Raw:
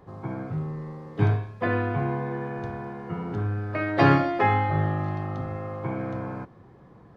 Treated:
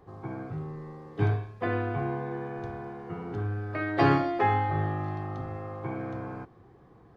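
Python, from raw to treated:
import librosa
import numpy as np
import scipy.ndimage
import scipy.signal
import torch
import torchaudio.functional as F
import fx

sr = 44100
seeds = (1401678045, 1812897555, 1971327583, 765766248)

y = x + 0.34 * np.pad(x, (int(2.6 * sr / 1000.0), 0))[:len(x)]
y = F.gain(torch.from_numpy(y), -4.0).numpy()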